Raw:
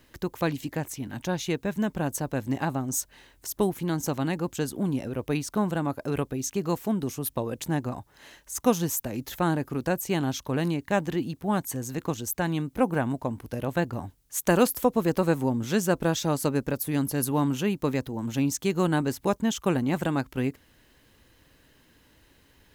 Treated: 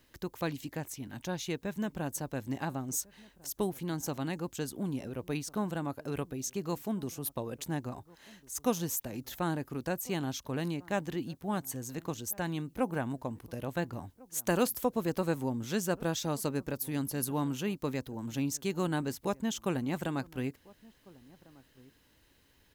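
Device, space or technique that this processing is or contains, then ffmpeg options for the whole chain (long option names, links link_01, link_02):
presence and air boost: -filter_complex "[0:a]equalizer=frequency=4600:width_type=o:width=1.5:gain=2.5,highshelf=frequency=11000:gain=4.5,asplit=2[link_01][link_02];[link_02]adelay=1399,volume=-23dB,highshelf=frequency=4000:gain=-31.5[link_03];[link_01][link_03]amix=inputs=2:normalize=0,volume=-7.5dB"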